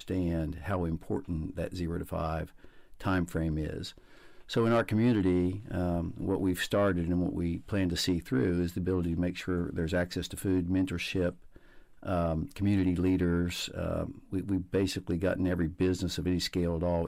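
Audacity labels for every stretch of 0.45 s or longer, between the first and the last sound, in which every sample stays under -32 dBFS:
2.430000	3.010000	silence
3.870000	4.510000	silence
11.290000	12.060000	silence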